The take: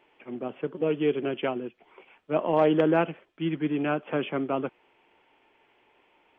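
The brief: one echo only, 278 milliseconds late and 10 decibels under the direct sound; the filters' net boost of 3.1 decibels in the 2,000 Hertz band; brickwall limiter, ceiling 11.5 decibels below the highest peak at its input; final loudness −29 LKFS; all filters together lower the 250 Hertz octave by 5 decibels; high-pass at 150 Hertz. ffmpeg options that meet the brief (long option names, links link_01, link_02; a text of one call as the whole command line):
ffmpeg -i in.wav -af "highpass=150,equalizer=frequency=250:width_type=o:gain=-6.5,equalizer=frequency=2000:width_type=o:gain=4.5,alimiter=limit=-21dB:level=0:latency=1,aecho=1:1:278:0.316,volume=3.5dB" out.wav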